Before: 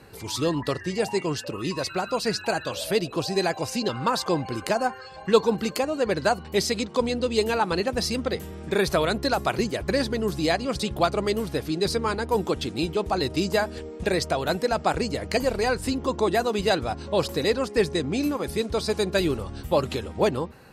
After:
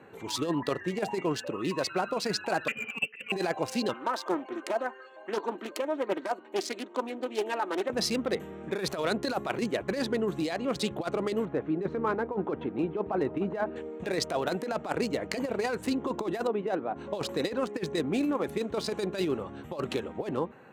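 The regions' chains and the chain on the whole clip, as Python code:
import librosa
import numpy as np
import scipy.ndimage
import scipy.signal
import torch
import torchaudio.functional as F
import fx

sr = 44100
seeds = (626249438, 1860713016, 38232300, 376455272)

y = fx.chain(x, sr, fx.comb(ms=3.2, depth=0.54),
    fx.transient(attack_db=10, sustain_db=-12),
    fx.freq_invert(carrier_hz=3000), at=(2.68, 3.32))
y = fx.chain(y, sr, fx.ladder_highpass(hz=260.0, resonance_pct=25),
    fx.comb(ms=3.2, depth=0.56),
    fx.doppler_dist(depth_ms=0.31), at=(3.93, 7.9))
y = fx.chain(y, sr, fx.lowpass(hz=1700.0, slope=12),
    fx.echo_single(ms=296, db=-22.0), at=(11.45, 13.76))
y = fx.chain(y, sr, fx.highpass(hz=200.0, slope=12),
    fx.spacing_loss(db_at_10k=38), at=(16.47, 16.96))
y = fx.wiener(y, sr, points=9)
y = scipy.signal.sosfilt(scipy.signal.butter(2, 190.0, 'highpass', fs=sr, output='sos'), y)
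y = fx.over_compress(y, sr, threshold_db=-25.0, ratio=-0.5)
y = y * 10.0 ** (-2.5 / 20.0)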